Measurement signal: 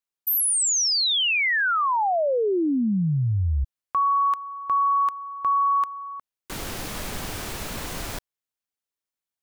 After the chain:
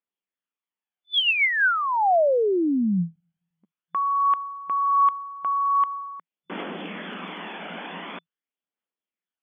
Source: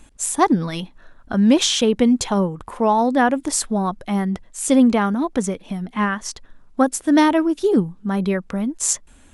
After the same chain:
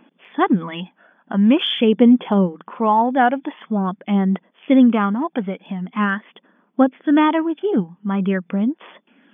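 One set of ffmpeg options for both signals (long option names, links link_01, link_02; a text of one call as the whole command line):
ffmpeg -i in.wav -af "afftfilt=real='re*between(b*sr/4096,170,3500)':imag='im*between(b*sr/4096,170,3500)':win_size=4096:overlap=0.75,aphaser=in_gain=1:out_gain=1:delay=1.4:decay=0.4:speed=0.45:type=triangular" out.wav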